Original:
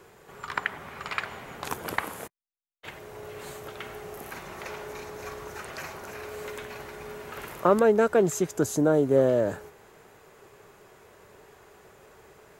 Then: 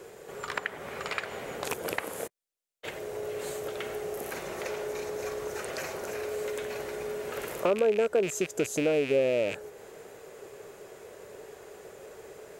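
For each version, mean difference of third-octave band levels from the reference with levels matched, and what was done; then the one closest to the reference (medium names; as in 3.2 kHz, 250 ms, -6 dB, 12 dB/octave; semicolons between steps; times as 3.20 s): 5.0 dB: rattle on loud lows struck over -38 dBFS, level -17 dBFS; graphic EQ 500/1000/8000 Hz +9/-5/+4 dB; compression 2:1, threshold -35 dBFS, peak gain reduction 13.5 dB; bass shelf 200 Hz -5 dB; trim +3 dB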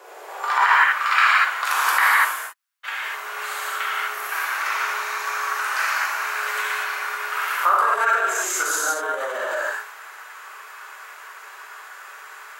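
12.0 dB: high-pass 320 Hz 24 dB/octave; gated-style reverb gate 270 ms flat, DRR -8 dB; peak limiter -14 dBFS, peak gain reduction 11.5 dB; high-pass sweep 630 Hz -> 1.3 kHz, 0.26–0.98 s; trim +5 dB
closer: first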